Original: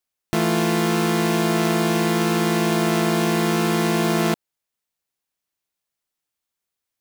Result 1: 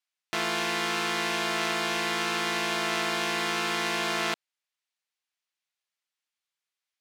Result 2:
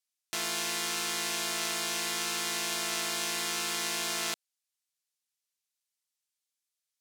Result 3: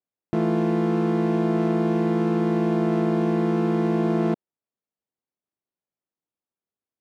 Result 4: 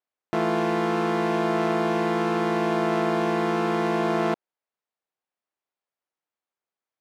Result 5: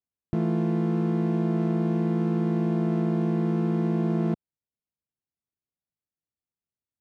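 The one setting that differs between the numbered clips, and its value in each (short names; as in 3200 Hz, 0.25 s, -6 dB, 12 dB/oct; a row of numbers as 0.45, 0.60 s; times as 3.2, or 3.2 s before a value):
band-pass, frequency: 2700, 6800, 280, 710, 110 Hz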